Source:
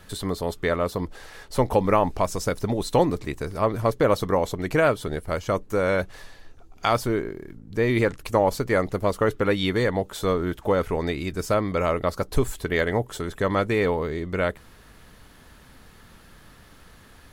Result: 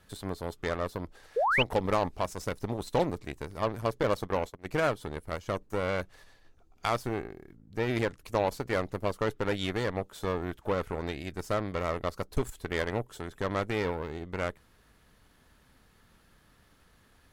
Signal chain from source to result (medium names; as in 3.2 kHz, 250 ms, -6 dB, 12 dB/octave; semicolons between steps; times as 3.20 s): Chebyshev shaper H 7 -25 dB, 8 -22 dB, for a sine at -7 dBFS; 1.36–1.63 s: painted sound rise 420–3200 Hz -18 dBFS; 4.03–4.69 s: gate -26 dBFS, range -20 dB; trim -7.5 dB